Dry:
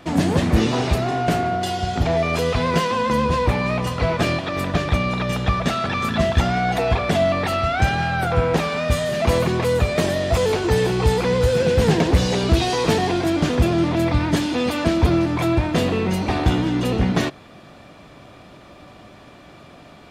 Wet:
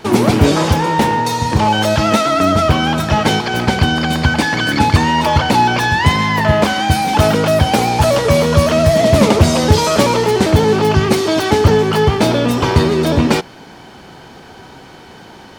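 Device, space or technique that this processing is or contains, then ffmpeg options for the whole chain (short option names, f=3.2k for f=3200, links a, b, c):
nightcore: -af "asetrate=56889,aresample=44100,volume=6.5dB"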